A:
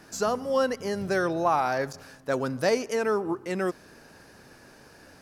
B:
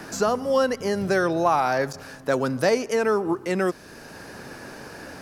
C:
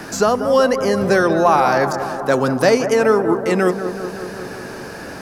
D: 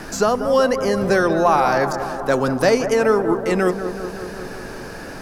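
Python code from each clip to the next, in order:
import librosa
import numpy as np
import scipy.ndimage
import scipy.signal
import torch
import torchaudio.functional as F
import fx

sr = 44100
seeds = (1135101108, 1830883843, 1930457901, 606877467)

y1 = fx.band_squash(x, sr, depth_pct=40)
y1 = y1 * 10.0 ** (4.0 / 20.0)
y2 = fx.echo_bbd(y1, sr, ms=187, stages=2048, feedback_pct=73, wet_db=-9.5)
y2 = y2 * 10.0 ** (6.5 / 20.0)
y3 = fx.dmg_noise_colour(y2, sr, seeds[0], colour='brown', level_db=-39.0)
y3 = y3 * 10.0 ** (-2.0 / 20.0)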